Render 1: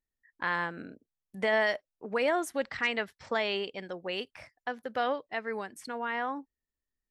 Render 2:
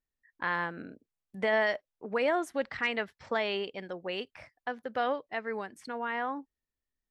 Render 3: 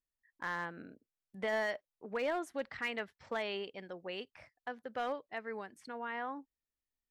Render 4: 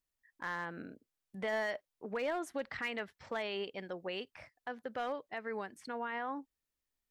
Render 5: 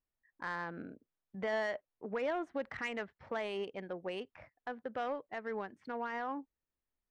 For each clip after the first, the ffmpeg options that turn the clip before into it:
-af "lowpass=f=3800:p=1"
-af "volume=11.9,asoftclip=hard,volume=0.0841,volume=0.473"
-af "alimiter=level_in=2.66:limit=0.0631:level=0:latency=1:release=77,volume=0.376,volume=1.5"
-af "adynamicsmooth=sensitivity=3.5:basefreq=2000,volume=1.12"

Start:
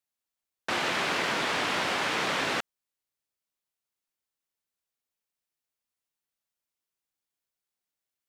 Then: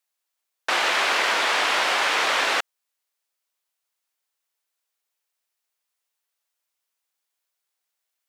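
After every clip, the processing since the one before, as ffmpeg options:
-af "highpass=550,volume=2.37"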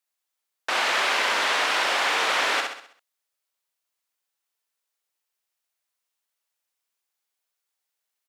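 -af "aecho=1:1:65|130|195|260|325|390:0.596|0.274|0.126|0.058|0.0267|0.0123,volume=0.708"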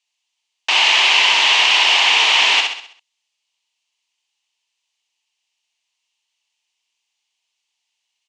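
-af "aexciter=amount=2.4:drive=6.6:freq=2200,highpass=320,equalizer=f=530:t=q:w=4:g=-10,equalizer=f=920:t=q:w=4:g=7,equalizer=f=1400:t=q:w=4:g=-8,equalizer=f=2900:t=q:w=4:g=7,equalizer=f=5300:t=q:w=4:g=-3,lowpass=f=6100:w=0.5412,lowpass=f=6100:w=1.3066,volume=1.41"

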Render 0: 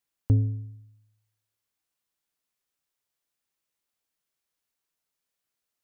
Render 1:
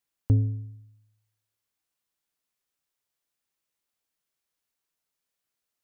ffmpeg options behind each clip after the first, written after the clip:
-af anull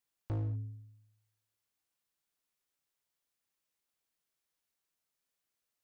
-filter_complex "[0:a]asplit=2[s0][s1];[s1]acompressor=threshold=0.0355:ratio=6,volume=0.794[s2];[s0][s2]amix=inputs=2:normalize=0,volume=17.8,asoftclip=hard,volume=0.0562,volume=0.422"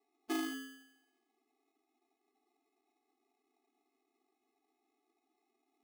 -af "acrusher=samples=28:mix=1:aa=0.000001,afftfilt=real='re*eq(mod(floor(b*sr/1024/220),2),1)':imag='im*eq(mod(floor(b*sr/1024/220),2),1)':win_size=1024:overlap=0.75,volume=2.99"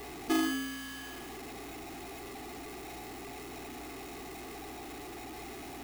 -af "aeval=exprs='val(0)+0.5*0.00596*sgn(val(0))':c=same,aeval=exprs='val(0)+0.000794*(sin(2*PI*60*n/s)+sin(2*PI*2*60*n/s)/2+sin(2*PI*3*60*n/s)/3+sin(2*PI*4*60*n/s)/4+sin(2*PI*5*60*n/s)/5)':c=same,volume=2.11"

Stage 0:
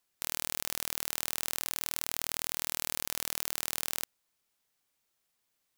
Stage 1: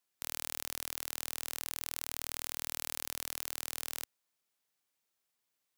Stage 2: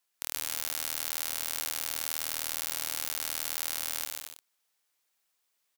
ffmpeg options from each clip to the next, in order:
-af "highpass=f=120:p=1,volume=0.596"
-af "lowshelf=f=380:g=-10.5,aecho=1:1:140|231|290.2|328.6|353.6:0.631|0.398|0.251|0.158|0.1,volume=1.58"

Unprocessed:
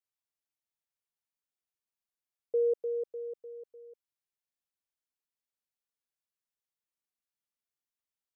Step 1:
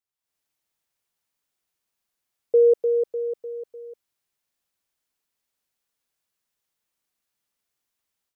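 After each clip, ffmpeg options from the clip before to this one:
-af "dynaudnorm=f=180:g=3:m=3.76"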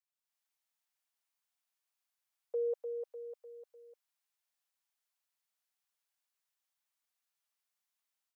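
-af "highpass=f=650:w=0.5412,highpass=f=650:w=1.3066,volume=0.473"

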